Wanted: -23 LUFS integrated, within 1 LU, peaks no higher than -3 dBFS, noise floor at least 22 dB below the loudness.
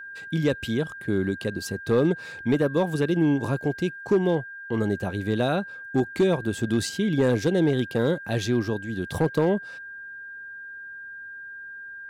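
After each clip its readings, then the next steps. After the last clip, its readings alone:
clipped samples 0.5%; clipping level -14.0 dBFS; steady tone 1.6 kHz; tone level -37 dBFS; loudness -25.5 LUFS; peak level -14.0 dBFS; loudness target -23.0 LUFS
-> clip repair -14 dBFS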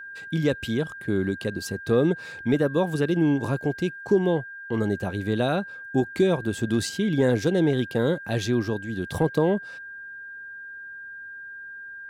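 clipped samples 0.0%; steady tone 1.6 kHz; tone level -37 dBFS
-> band-stop 1.6 kHz, Q 30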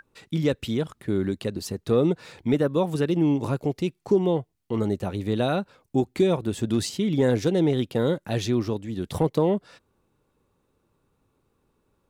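steady tone not found; loudness -25.5 LUFS; peak level -10.5 dBFS; loudness target -23.0 LUFS
-> trim +2.5 dB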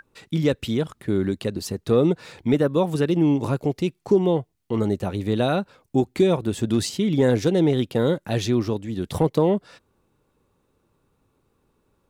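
loudness -23.0 LUFS; peak level -8.0 dBFS; noise floor -69 dBFS

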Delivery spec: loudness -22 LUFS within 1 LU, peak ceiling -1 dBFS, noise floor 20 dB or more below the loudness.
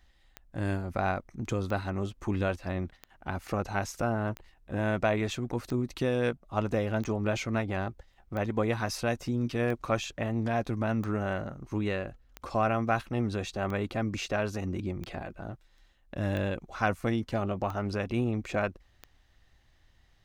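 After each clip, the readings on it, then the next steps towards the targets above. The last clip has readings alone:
clicks found 15; loudness -31.5 LUFS; peak level -12.0 dBFS; loudness target -22.0 LUFS
-> de-click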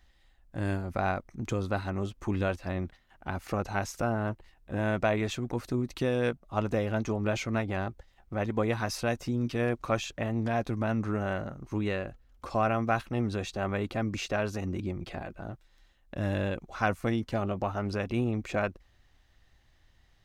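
clicks found 0; loudness -31.5 LUFS; peak level -12.0 dBFS; loudness target -22.0 LUFS
-> trim +9.5 dB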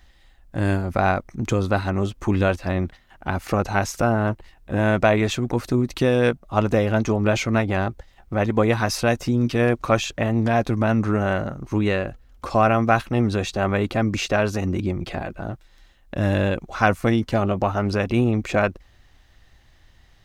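loudness -22.0 LUFS; peak level -2.5 dBFS; noise floor -55 dBFS

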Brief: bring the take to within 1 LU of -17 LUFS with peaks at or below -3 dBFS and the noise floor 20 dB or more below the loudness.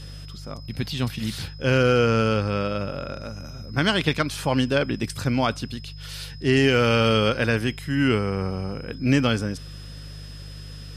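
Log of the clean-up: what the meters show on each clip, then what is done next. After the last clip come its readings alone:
hum 50 Hz; highest harmonic 150 Hz; hum level -37 dBFS; steady tone 5.1 kHz; tone level -46 dBFS; loudness -23.0 LUFS; peak level -7.5 dBFS; loudness target -17.0 LUFS
-> de-hum 50 Hz, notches 3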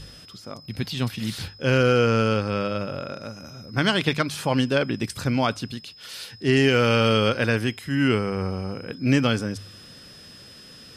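hum not found; steady tone 5.1 kHz; tone level -46 dBFS
-> band-stop 5.1 kHz, Q 30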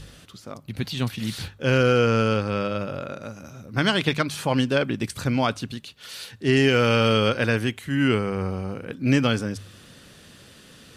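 steady tone not found; loudness -23.0 LUFS; peak level -7.5 dBFS; loudness target -17.0 LUFS
-> trim +6 dB; peak limiter -3 dBFS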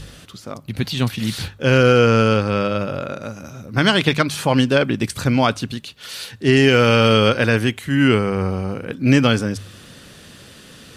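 loudness -17.5 LUFS; peak level -3.0 dBFS; noise floor -44 dBFS

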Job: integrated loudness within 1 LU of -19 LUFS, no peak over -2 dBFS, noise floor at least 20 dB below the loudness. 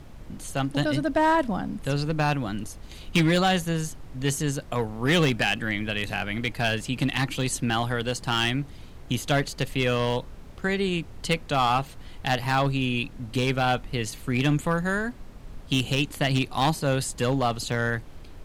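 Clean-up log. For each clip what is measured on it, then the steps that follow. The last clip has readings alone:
clipped samples 1.0%; clipping level -15.5 dBFS; noise floor -44 dBFS; noise floor target -46 dBFS; loudness -26.0 LUFS; peak level -15.5 dBFS; loudness target -19.0 LUFS
-> clip repair -15.5 dBFS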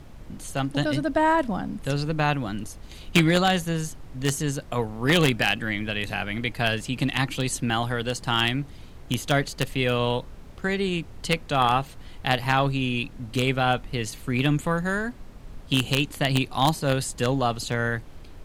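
clipped samples 0.0%; noise floor -44 dBFS; noise floor target -45 dBFS
-> noise print and reduce 6 dB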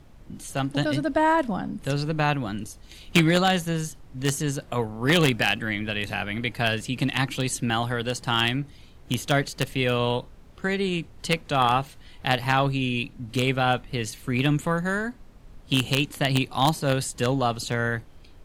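noise floor -49 dBFS; loudness -25.0 LUFS; peak level -6.5 dBFS; loudness target -19.0 LUFS
-> trim +6 dB; peak limiter -2 dBFS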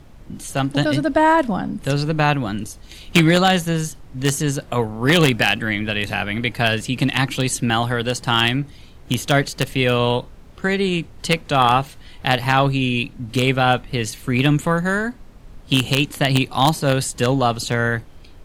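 loudness -19.5 LUFS; peak level -2.0 dBFS; noise floor -43 dBFS

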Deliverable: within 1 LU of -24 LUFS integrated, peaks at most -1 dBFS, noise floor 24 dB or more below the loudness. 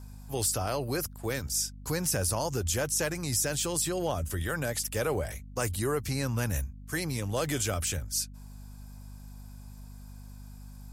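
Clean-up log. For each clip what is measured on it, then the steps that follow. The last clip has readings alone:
hum 50 Hz; highest harmonic 250 Hz; hum level -44 dBFS; loudness -30.5 LUFS; peak level -15.0 dBFS; loudness target -24.0 LUFS
-> hum notches 50/100/150/200/250 Hz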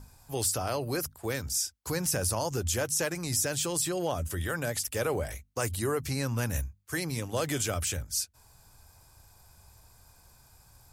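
hum not found; loudness -30.5 LUFS; peak level -15.5 dBFS; loudness target -24.0 LUFS
-> trim +6.5 dB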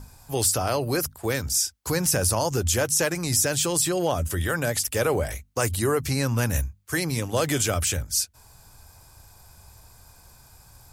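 loudness -24.0 LUFS; peak level -9.0 dBFS; noise floor -53 dBFS

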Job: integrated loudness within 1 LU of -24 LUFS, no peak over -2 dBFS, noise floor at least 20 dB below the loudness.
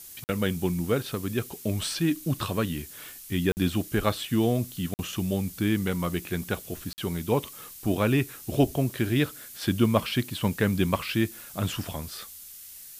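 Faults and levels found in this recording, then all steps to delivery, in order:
dropouts 4; longest dropout 49 ms; noise floor -45 dBFS; noise floor target -48 dBFS; loudness -28.0 LUFS; peak level -7.5 dBFS; loudness target -24.0 LUFS
-> interpolate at 0.24/3.52/4.94/6.93 s, 49 ms; noise reduction 6 dB, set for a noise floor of -45 dBFS; trim +4 dB

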